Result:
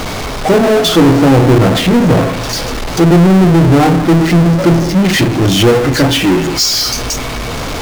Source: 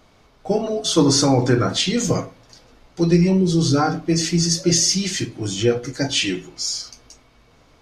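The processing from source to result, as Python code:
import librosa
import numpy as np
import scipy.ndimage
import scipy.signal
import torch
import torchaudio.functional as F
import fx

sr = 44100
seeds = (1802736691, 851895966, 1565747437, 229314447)

y = fx.env_lowpass_down(x, sr, base_hz=720.0, full_db=-15.5)
y = fx.power_curve(y, sr, exponent=0.35)
y = y * 10.0 ** (3.0 / 20.0)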